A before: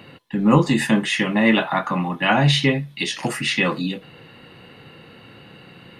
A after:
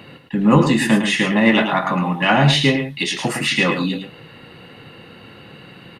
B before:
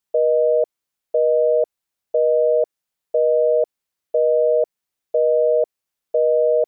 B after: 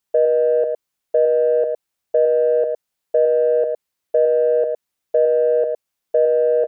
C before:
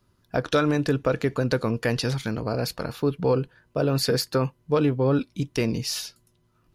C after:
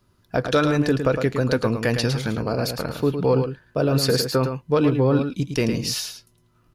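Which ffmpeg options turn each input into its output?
-filter_complex "[0:a]asplit=2[a][b];[b]asoftclip=type=tanh:threshold=-13.5dB,volume=-8.5dB[c];[a][c]amix=inputs=2:normalize=0,aecho=1:1:109:0.422"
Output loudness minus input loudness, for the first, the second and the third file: +3.0, +1.0, +3.0 LU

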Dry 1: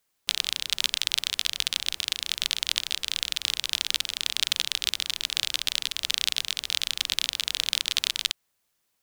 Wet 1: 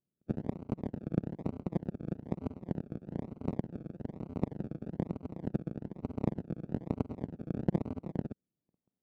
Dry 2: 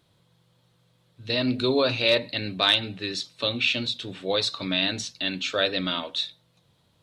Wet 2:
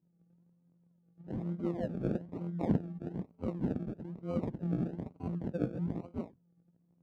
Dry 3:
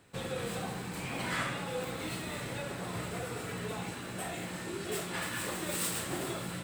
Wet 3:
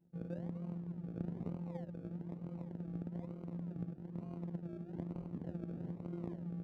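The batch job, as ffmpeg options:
-af "afftfilt=real='hypot(re,im)*cos(PI*b)':imag='0':win_size=1024:overlap=0.75,acrusher=samples=35:mix=1:aa=0.000001:lfo=1:lforange=21:lforate=1.1,bandpass=f=180:t=q:w=1.4:csg=0,volume=1dB"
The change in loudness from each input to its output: -12.0, -12.0, -8.0 LU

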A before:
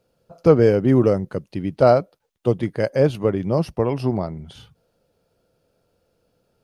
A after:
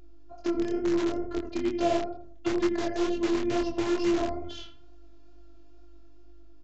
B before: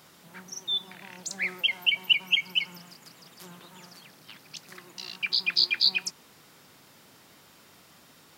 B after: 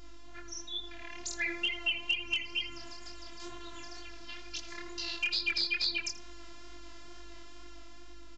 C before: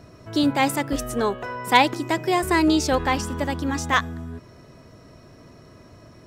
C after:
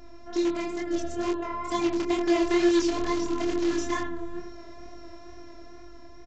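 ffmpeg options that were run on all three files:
-filter_complex "[0:a]acrossover=split=110|410[a][b][c];[a]acompressor=threshold=-39dB:ratio=4[d];[b]acompressor=threshold=-25dB:ratio=4[e];[c]acompressor=threshold=-32dB:ratio=4[f];[d][e][f]amix=inputs=3:normalize=0,asplit=2[g][h];[h]adelay=82,lowpass=f=1.7k:p=1,volume=-7dB,asplit=2[i][j];[j]adelay=82,lowpass=f=1.7k:p=1,volume=0.4,asplit=2[k][l];[l]adelay=82,lowpass=f=1.7k:p=1,volume=0.4,asplit=2[m][n];[n]adelay=82,lowpass=f=1.7k:p=1,volume=0.4,asplit=2[o][p];[p]adelay=82,lowpass=f=1.7k:p=1,volume=0.4[q];[g][i][k][m][o][q]amix=inputs=6:normalize=0,dynaudnorm=f=240:g=11:m=5.5dB,aeval=exprs='val(0)+0.00708*(sin(2*PI*50*n/s)+sin(2*PI*2*50*n/s)/2+sin(2*PI*3*50*n/s)/3+sin(2*PI*4*50*n/s)/4+sin(2*PI*5*50*n/s)/5)':c=same,afftfilt=real='hypot(re,im)*cos(PI*b)':imag='0':win_size=512:overlap=0.75,asplit=2[r][s];[s]aeval=exprs='(mod(8.91*val(0)+1,2)-1)/8.91':c=same,volume=-7dB[t];[r][t]amix=inputs=2:normalize=0,flanger=delay=22.5:depth=4.8:speed=2.2,aresample=16000,aresample=44100"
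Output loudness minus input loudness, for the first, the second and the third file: -9.0, -8.0, -5.0 LU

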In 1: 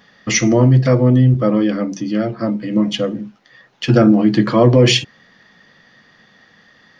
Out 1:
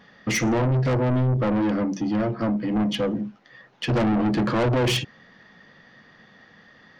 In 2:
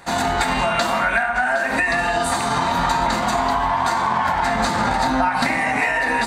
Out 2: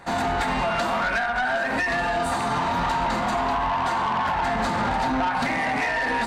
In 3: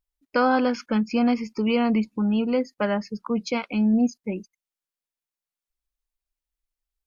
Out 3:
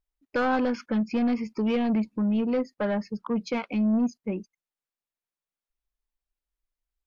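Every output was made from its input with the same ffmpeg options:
-af "highshelf=f=3.4k:g=-9.5,asoftclip=type=tanh:threshold=-19dB"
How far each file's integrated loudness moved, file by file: -8.5, -4.5, -3.0 LU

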